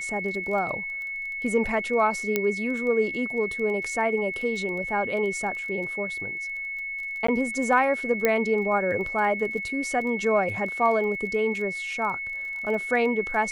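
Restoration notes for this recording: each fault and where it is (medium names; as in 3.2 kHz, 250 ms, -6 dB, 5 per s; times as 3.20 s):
crackle 16 per s -34 dBFS
whine 2.2 kHz -30 dBFS
2.36 s: pop -9 dBFS
7.27–7.28 s: dropout 14 ms
8.25 s: pop -8 dBFS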